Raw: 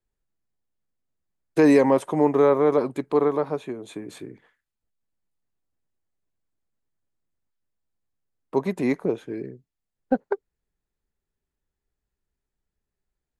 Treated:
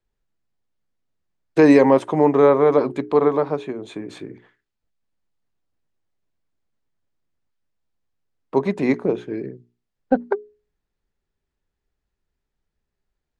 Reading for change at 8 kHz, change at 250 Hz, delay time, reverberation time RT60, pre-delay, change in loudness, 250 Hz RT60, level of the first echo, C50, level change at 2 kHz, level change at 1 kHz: can't be measured, +4.0 dB, no echo audible, no reverb audible, no reverb audible, +4.0 dB, no reverb audible, no echo audible, no reverb audible, +4.5 dB, +4.5 dB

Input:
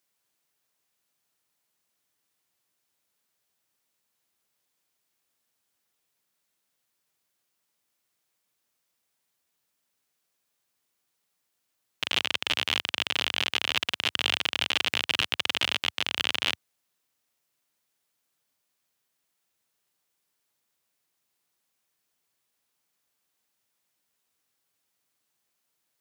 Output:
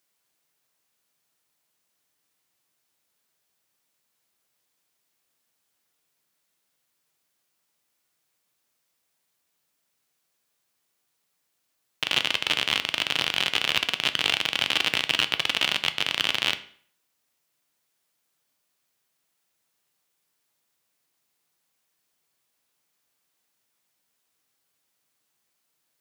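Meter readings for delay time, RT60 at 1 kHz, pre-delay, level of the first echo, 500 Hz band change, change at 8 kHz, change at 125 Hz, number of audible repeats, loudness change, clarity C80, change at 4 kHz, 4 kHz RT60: no echo audible, 0.55 s, 6 ms, no echo audible, +3.0 dB, +3.0 dB, +3.0 dB, no echo audible, +3.0 dB, 19.0 dB, +3.0 dB, 0.45 s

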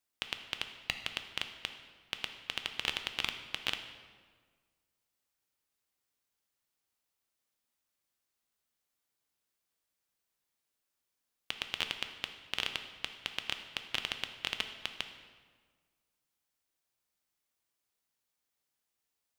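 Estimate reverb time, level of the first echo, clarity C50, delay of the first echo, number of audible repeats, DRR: 1.6 s, no echo audible, 8.5 dB, no echo audible, no echo audible, 6.5 dB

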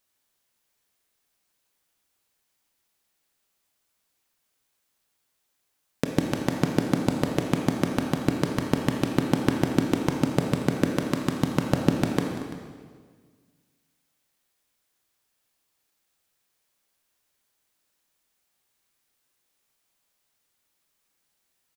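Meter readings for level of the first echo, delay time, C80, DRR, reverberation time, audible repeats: −16.0 dB, 232 ms, 4.5 dB, 2.0 dB, 1.6 s, 2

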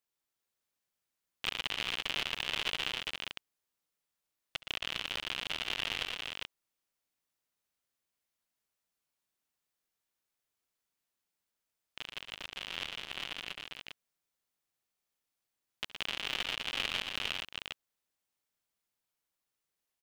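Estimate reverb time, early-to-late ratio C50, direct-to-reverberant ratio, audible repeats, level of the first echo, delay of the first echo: no reverb audible, no reverb audible, no reverb audible, 4, −18.0 dB, 69 ms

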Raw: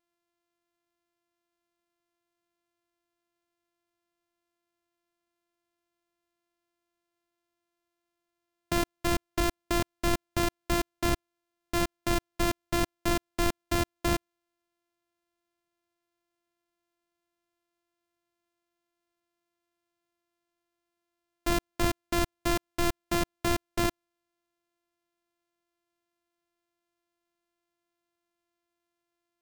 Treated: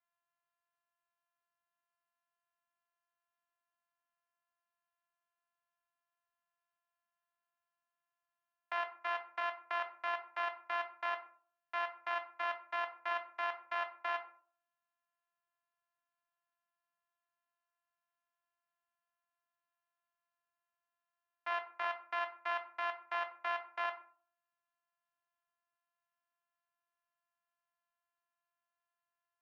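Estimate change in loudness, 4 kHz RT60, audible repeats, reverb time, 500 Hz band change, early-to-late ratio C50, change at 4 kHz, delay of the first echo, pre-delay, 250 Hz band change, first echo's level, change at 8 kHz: −8.5 dB, 0.25 s, no echo audible, 0.45 s, −11.5 dB, 11.5 dB, −13.0 dB, no echo audible, 12 ms, −36.0 dB, no echo audible, below −30 dB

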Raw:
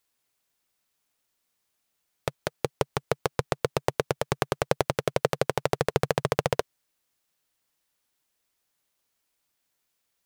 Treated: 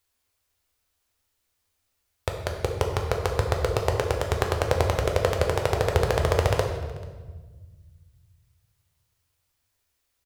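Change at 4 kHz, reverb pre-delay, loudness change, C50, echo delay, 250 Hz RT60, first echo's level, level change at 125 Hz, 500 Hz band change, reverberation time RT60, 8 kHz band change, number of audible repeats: +2.0 dB, 8 ms, +3.0 dB, 5.0 dB, 438 ms, 2.3 s, −23.0 dB, +7.5 dB, +2.5 dB, 1.4 s, +1.5 dB, 1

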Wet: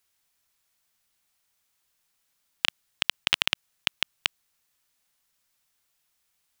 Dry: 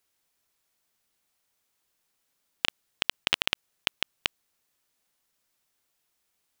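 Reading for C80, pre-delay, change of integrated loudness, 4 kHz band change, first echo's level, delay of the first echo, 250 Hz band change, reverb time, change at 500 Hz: no reverb audible, no reverb audible, +2.0 dB, +2.5 dB, no echo audible, no echo audible, −2.5 dB, no reverb audible, −3.0 dB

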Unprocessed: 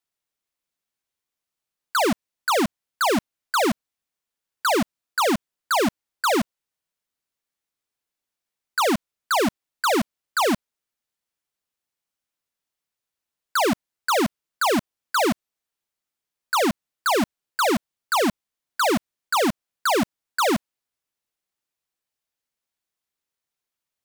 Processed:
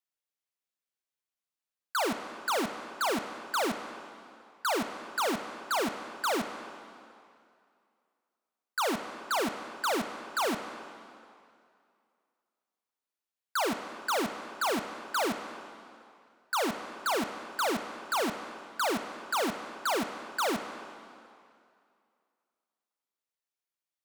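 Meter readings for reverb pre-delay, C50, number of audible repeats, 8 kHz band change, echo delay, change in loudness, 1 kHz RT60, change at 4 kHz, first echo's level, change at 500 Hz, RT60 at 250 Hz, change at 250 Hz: 25 ms, 7.5 dB, no echo audible, −8.0 dB, no echo audible, −8.5 dB, 2.4 s, −7.5 dB, no echo audible, −8.5 dB, 2.2 s, −10.5 dB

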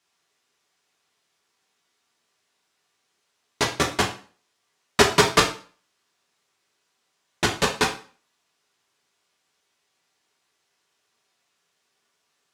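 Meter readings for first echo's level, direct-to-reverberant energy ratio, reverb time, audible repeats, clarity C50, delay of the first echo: no echo audible, −1.0 dB, 0.40 s, no echo audible, 9.5 dB, no echo audible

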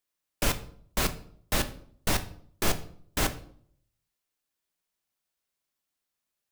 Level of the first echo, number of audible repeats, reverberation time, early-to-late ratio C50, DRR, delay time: no echo audible, no echo audible, 0.60 s, 14.5 dB, 8.5 dB, no echo audible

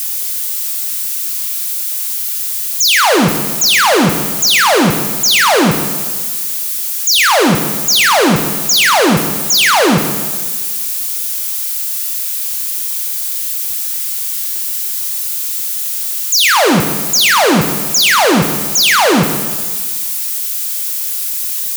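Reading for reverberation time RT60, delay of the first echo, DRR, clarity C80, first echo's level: 1.6 s, no echo audible, 5.5 dB, 8.5 dB, no echo audible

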